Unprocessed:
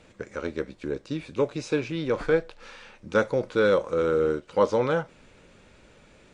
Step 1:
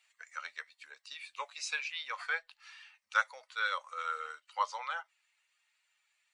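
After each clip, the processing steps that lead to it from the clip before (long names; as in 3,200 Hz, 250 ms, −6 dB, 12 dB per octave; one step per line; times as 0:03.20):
spectral dynamics exaggerated over time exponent 1.5
inverse Chebyshev high-pass filter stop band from 370 Hz, stop band 50 dB
speech leveller within 3 dB 0.5 s
level +1.5 dB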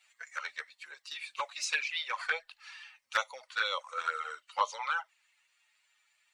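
flanger swept by the level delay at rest 8.3 ms, full sweep at −30 dBFS
level +7.5 dB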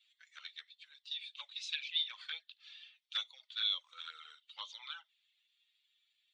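resonant band-pass 3,500 Hz, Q 8.4
level +6 dB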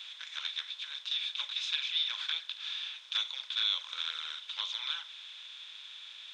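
compressor on every frequency bin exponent 0.4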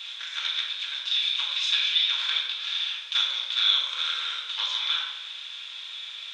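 rectangular room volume 560 cubic metres, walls mixed, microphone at 1.7 metres
level +5.5 dB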